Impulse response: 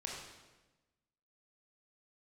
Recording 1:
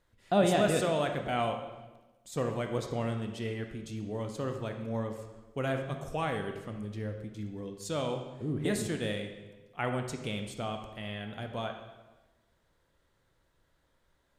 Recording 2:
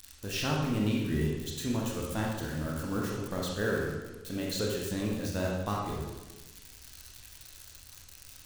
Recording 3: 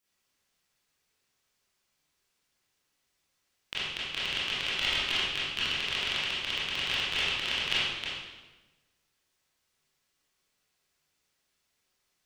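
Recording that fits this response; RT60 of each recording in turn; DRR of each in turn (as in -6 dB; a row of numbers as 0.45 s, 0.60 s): 2; 1.1 s, 1.1 s, 1.1 s; 4.5 dB, -2.5 dB, -9.5 dB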